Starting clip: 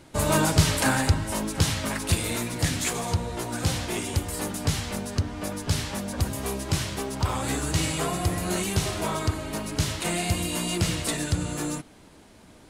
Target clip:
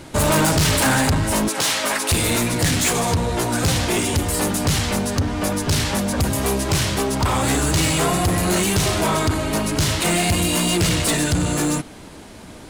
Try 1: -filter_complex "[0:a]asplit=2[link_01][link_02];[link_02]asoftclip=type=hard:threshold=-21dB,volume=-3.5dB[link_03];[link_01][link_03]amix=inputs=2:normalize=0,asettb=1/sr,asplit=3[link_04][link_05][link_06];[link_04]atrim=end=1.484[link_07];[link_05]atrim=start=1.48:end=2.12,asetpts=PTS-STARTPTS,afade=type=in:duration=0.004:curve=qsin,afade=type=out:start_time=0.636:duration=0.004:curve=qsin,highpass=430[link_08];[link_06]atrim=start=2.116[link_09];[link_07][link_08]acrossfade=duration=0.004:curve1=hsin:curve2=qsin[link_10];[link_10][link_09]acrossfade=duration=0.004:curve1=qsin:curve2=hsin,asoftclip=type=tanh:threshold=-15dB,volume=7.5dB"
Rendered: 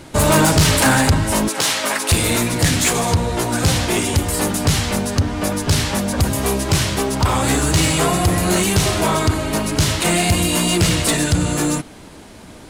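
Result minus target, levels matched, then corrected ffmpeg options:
soft clipping: distortion −6 dB
-filter_complex "[0:a]asplit=2[link_01][link_02];[link_02]asoftclip=type=hard:threshold=-21dB,volume=-3.5dB[link_03];[link_01][link_03]amix=inputs=2:normalize=0,asettb=1/sr,asplit=3[link_04][link_05][link_06];[link_04]atrim=end=1.484[link_07];[link_05]atrim=start=1.48:end=2.12,asetpts=PTS-STARTPTS,afade=type=in:duration=0.004:curve=qsin,afade=type=out:start_time=0.636:duration=0.004:curve=qsin,highpass=430[link_08];[link_06]atrim=start=2.116[link_09];[link_07][link_08]acrossfade=duration=0.004:curve1=hsin:curve2=qsin[link_10];[link_10][link_09]acrossfade=duration=0.004:curve1=qsin:curve2=hsin,asoftclip=type=tanh:threshold=-21.5dB,volume=7.5dB"

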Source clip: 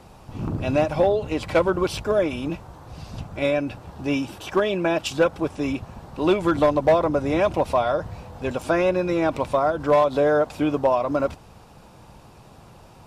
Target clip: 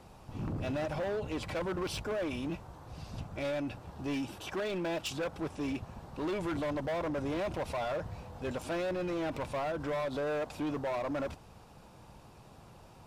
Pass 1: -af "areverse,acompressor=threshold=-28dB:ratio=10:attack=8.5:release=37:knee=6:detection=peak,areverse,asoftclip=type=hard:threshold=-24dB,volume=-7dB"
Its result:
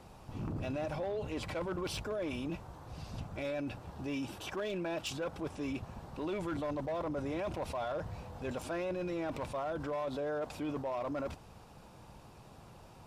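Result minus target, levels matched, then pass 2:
downward compressor: peak gain reduction +6.5 dB
-af "areverse,acompressor=threshold=-21dB:ratio=10:attack=8.5:release=37:knee=6:detection=peak,areverse,asoftclip=type=hard:threshold=-24dB,volume=-7dB"

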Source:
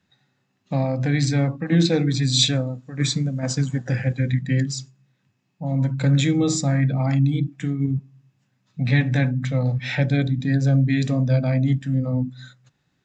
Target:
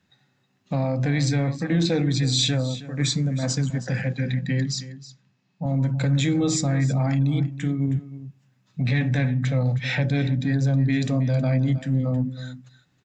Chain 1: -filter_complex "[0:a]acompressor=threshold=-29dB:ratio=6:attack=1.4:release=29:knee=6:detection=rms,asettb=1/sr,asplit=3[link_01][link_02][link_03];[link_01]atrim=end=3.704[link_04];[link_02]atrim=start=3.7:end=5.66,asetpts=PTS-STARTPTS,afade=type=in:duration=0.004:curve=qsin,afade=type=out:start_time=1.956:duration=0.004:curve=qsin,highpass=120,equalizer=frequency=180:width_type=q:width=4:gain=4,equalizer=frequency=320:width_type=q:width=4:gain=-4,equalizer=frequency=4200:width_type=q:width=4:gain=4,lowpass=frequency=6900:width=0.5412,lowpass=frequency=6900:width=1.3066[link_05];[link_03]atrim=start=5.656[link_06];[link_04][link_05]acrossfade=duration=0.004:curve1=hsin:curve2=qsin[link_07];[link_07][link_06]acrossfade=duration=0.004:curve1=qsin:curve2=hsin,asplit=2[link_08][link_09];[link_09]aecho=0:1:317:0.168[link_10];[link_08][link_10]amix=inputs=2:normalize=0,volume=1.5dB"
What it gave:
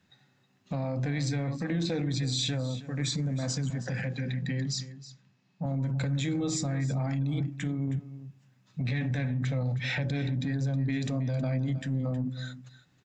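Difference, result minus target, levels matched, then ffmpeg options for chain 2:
downward compressor: peak gain reduction +8.5 dB
-filter_complex "[0:a]acompressor=threshold=-18.5dB:ratio=6:attack=1.4:release=29:knee=6:detection=rms,asettb=1/sr,asplit=3[link_01][link_02][link_03];[link_01]atrim=end=3.704[link_04];[link_02]atrim=start=3.7:end=5.66,asetpts=PTS-STARTPTS,afade=type=in:duration=0.004:curve=qsin,afade=type=out:start_time=1.956:duration=0.004:curve=qsin,highpass=120,equalizer=frequency=180:width_type=q:width=4:gain=4,equalizer=frequency=320:width_type=q:width=4:gain=-4,equalizer=frequency=4200:width_type=q:width=4:gain=4,lowpass=frequency=6900:width=0.5412,lowpass=frequency=6900:width=1.3066[link_05];[link_03]atrim=start=5.656[link_06];[link_04][link_05]acrossfade=duration=0.004:curve1=hsin:curve2=qsin[link_07];[link_07][link_06]acrossfade=duration=0.004:curve1=qsin:curve2=hsin,asplit=2[link_08][link_09];[link_09]aecho=0:1:317:0.168[link_10];[link_08][link_10]amix=inputs=2:normalize=0,volume=1.5dB"

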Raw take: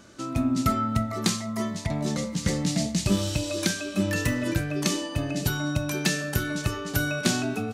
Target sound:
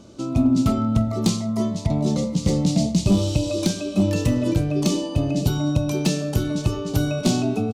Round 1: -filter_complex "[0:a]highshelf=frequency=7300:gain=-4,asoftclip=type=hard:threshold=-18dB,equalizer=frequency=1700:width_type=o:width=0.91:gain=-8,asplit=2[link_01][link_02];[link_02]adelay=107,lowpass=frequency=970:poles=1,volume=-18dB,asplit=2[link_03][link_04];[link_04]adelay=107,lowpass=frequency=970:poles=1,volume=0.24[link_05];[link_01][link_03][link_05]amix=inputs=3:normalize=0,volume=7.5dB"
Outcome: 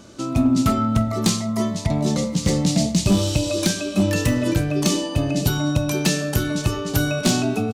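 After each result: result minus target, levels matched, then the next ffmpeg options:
2,000 Hz band +7.0 dB; 8,000 Hz band +5.0 dB
-filter_complex "[0:a]highshelf=frequency=7300:gain=-4,asoftclip=type=hard:threshold=-18dB,equalizer=frequency=1700:width_type=o:width=0.91:gain=-19.5,asplit=2[link_01][link_02];[link_02]adelay=107,lowpass=frequency=970:poles=1,volume=-18dB,asplit=2[link_03][link_04];[link_04]adelay=107,lowpass=frequency=970:poles=1,volume=0.24[link_05];[link_01][link_03][link_05]amix=inputs=3:normalize=0,volume=7.5dB"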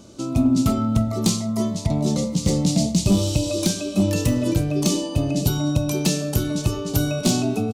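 8,000 Hz band +5.0 dB
-filter_complex "[0:a]highshelf=frequency=7300:gain=-15.5,asoftclip=type=hard:threshold=-18dB,equalizer=frequency=1700:width_type=o:width=0.91:gain=-19.5,asplit=2[link_01][link_02];[link_02]adelay=107,lowpass=frequency=970:poles=1,volume=-18dB,asplit=2[link_03][link_04];[link_04]adelay=107,lowpass=frequency=970:poles=1,volume=0.24[link_05];[link_01][link_03][link_05]amix=inputs=3:normalize=0,volume=7.5dB"

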